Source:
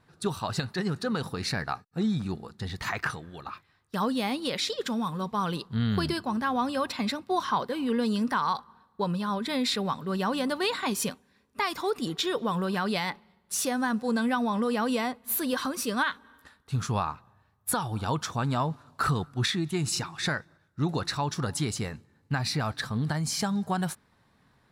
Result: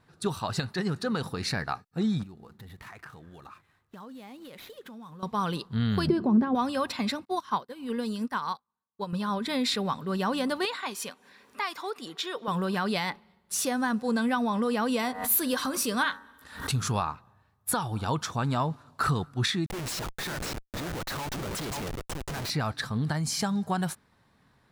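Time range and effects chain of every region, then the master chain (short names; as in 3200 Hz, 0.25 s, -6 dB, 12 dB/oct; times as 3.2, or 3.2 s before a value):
2.23–5.23 median filter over 9 samples + compressor 4:1, threshold -45 dBFS + bell 12000 Hz +5.5 dB 0.27 oct
6.07–6.55 LPF 2100 Hz 6 dB/oct + compressor 4:1, threshold -35 dBFS + small resonant body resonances 220/370 Hz, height 17 dB, ringing for 25 ms
7.25–9.13 high shelf 8600 Hz +7.5 dB + upward expander 2.5:1, over -44 dBFS
10.65–12.48 HPF 900 Hz 6 dB/oct + high shelf 3600 Hz -6.5 dB + upward compressor, threshold -40 dBFS
14.99–17.02 high shelf 5200 Hz +5.5 dB + de-hum 94.07 Hz, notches 21 + backwards sustainer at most 100 dB/s
19.66–22.5 HPF 360 Hz 6 dB/oct + echo 0.544 s -8 dB + Schmitt trigger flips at -36.5 dBFS
whole clip: dry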